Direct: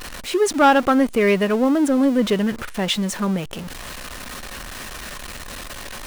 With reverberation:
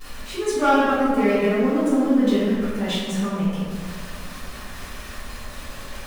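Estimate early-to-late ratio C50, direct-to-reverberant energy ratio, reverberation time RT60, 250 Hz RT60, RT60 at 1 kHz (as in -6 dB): -2.5 dB, -11.5 dB, 2.0 s, 2.3 s, 1.9 s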